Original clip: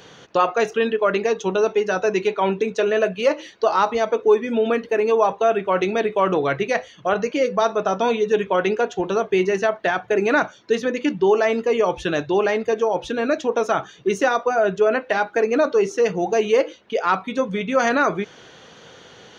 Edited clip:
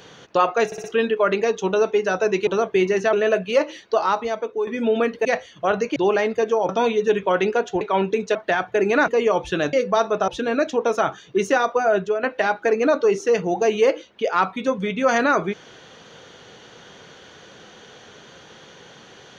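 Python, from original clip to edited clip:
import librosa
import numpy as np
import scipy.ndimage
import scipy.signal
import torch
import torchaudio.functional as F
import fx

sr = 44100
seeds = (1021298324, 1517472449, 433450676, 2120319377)

y = fx.edit(x, sr, fx.stutter(start_s=0.66, slice_s=0.06, count=4),
    fx.swap(start_s=2.29, length_s=0.54, other_s=9.05, other_length_s=0.66),
    fx.fade_out_to(start_s=3.52, length_s=0.85, floor_db=-10.5),
    fx.cut(start_s=4.95, length_s=1.72),
    fx.swap(start_s=7.38, length_s=0.55, other_s=12.26, other_length_s=0.73),
    fx.cut(start_s=10.44, length_s=1.17),
    fx.fade_out_to(start_s=14.68, length_s=0.26, floor_db=-11.5), tone=tone)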